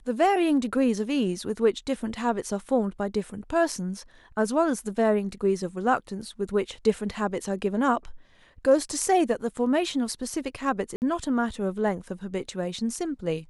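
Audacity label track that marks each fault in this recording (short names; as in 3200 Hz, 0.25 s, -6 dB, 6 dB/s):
10.960000	11.020000	gap 59 ms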